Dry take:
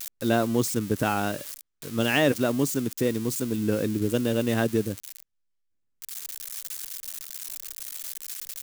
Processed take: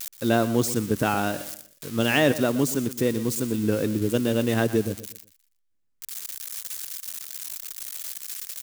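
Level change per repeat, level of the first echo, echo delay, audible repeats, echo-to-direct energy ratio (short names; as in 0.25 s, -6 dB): -9.5 dB, -14.5 dB, 0.121 s, 3, -14.0 dB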